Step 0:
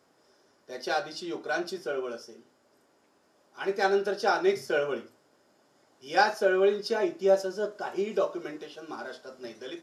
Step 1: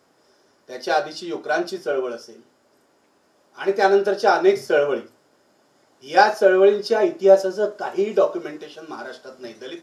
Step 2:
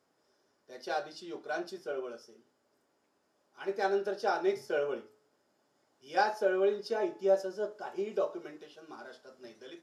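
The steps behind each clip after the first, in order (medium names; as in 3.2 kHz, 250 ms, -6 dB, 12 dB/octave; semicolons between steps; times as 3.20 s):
dynamic bell 570 Hz, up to +5 dB, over -35 dBFS, Q 0.71; trim +5 dB
feedback comb 430 Hz, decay 0.65 s, mix 50%; trim -8 dB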